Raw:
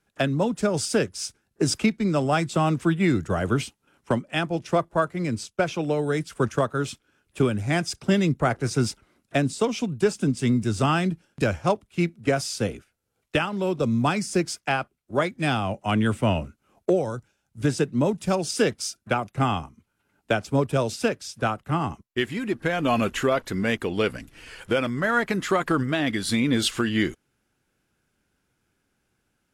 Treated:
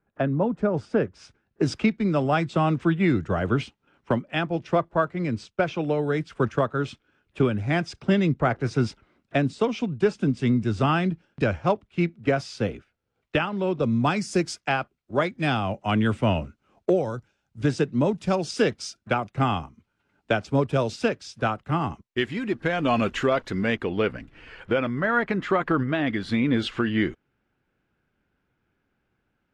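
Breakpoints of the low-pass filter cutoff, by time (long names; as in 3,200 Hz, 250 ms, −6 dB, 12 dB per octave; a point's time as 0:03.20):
0:00.93 1,400 Hz
0:01.68 3,500 Hz
0:13.91 3,500 Hz
0:14.41 8,500 Hz
0:14.67 5,000 Hz
0:23.49 5,000 Hz
0:24.02 2,600 Hz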